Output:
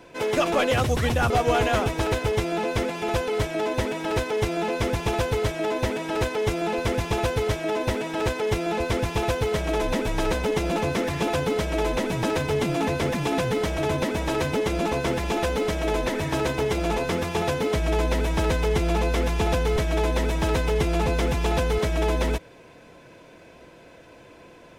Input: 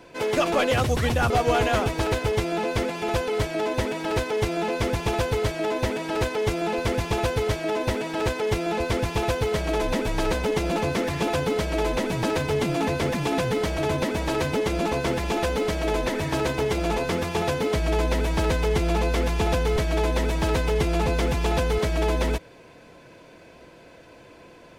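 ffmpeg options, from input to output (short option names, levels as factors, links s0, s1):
-af "bandreject=f=4500:w=18"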